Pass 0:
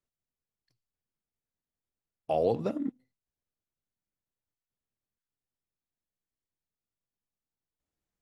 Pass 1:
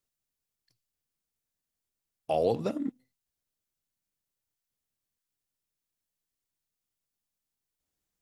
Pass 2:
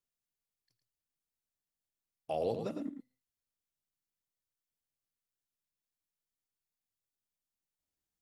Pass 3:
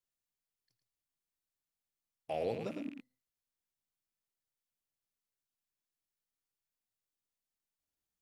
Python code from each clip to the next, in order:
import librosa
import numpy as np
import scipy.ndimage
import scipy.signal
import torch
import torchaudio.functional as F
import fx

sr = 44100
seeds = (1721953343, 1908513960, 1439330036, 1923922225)

y1 = fx.high_shelf(x, sr, hz=3300.0, db=8.5)
y2 = y1 + 10.0 ** (-8.0 / 20.0) * np.pad(y1, (int(110 * sr / 1000.0), 0))[:len(y1)]
y2 = y2 * 10.0 ** (-7.5 / 20.0)
y3 = fx.rattle_buzz(y2, sr, strikes_db=-50.0, level_db=-40.0)
y3 = y3 * 10.0 ** (-2.0 / 20.0)